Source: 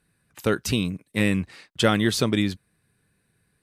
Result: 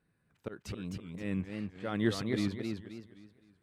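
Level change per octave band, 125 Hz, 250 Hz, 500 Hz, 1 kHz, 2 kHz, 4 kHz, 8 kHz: -11.0, -10.0, -12.5, -15.0, -14.5, -16.5, -17.5 dB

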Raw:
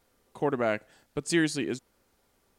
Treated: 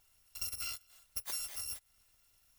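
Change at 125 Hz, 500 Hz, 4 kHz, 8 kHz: -23.0, -36.0, -4.5, -1.5 dB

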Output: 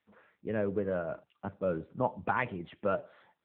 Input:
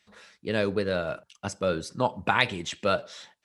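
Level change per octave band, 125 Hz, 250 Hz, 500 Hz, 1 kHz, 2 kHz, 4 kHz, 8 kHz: -5.0 dB, -4.5 dB, -4.5 dB, -6.0 dB, -9.5 dB, under -20 dB, under -40 dB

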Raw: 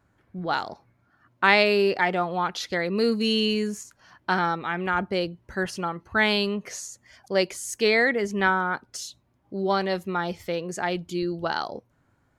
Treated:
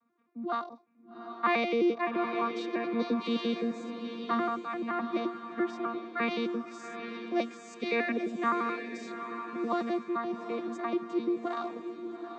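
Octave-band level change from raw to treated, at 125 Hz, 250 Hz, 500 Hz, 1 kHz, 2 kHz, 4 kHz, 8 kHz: under -15 dB, -2.5 dB, -7.0 dB, -6.0 dB, -12.0 dB, -14.0 dB, under -15 dB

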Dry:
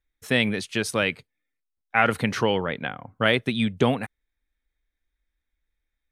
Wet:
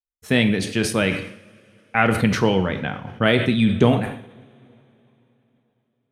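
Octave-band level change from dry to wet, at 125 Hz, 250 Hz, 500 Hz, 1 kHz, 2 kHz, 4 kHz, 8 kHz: +8.0, +7.0, +4.0, +2.0, +1.5, +1.5, +4.5 dB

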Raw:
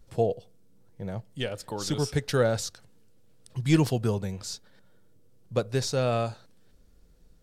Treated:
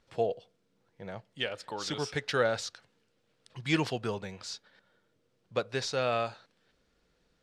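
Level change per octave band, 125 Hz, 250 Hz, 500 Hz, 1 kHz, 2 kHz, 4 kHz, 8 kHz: -11.5, -7.5, -4.0, -0.5, +2.5, -0.5, -6.5 dB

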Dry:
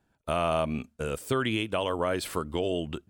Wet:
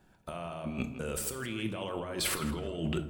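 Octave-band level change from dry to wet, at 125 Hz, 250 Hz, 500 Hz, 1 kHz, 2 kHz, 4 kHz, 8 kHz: -3.0, -3.5, -9.0, -10.0, -5.0, -3.5, +5.5 dB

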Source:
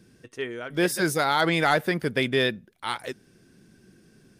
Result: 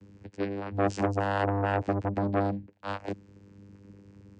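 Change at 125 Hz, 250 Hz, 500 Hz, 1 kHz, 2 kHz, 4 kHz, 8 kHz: +1.5 dB, -2.5 dB, -3.5 dB, -4.0 dB, -11.0 dB, -18.0 dB, under -15 dB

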